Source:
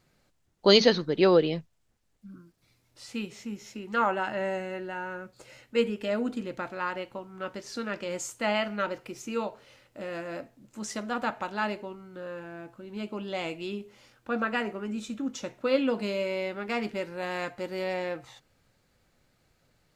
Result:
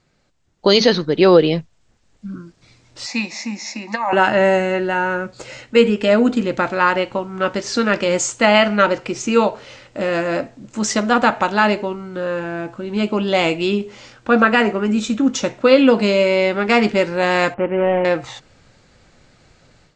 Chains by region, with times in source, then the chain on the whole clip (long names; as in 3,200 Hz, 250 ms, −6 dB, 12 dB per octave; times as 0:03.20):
0:03.06–0:04.13: high-pass filter 260 Hz 24 dB per octave + compressor whose output falls as the input rises −31 dBFS + phaser with its sweep stopped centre 2,100 Hz, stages 8
0:17.54–0:18.05: running median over 25 samples + Chebyshev low-pass filter 2,900 Hz, order 6
whole clip: Butterworth low-pass 8,000 Hz 48 dB per octave; automatic gain control gain up to 12 dB; boost into a limiter +5.5 dB; level −1 dB